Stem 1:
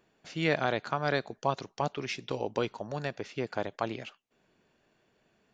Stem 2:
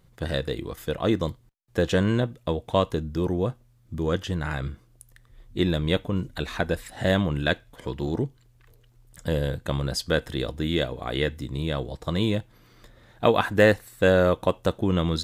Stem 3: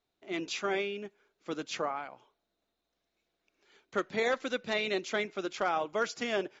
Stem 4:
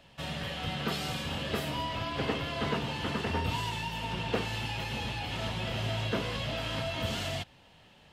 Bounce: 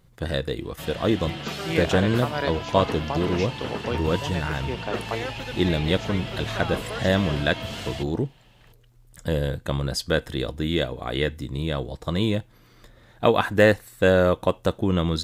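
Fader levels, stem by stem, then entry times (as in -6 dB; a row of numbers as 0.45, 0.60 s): +1.0, +1.0, -4.0, 0.0 dB; 1.30, 0.00, 0.95, 0.60 s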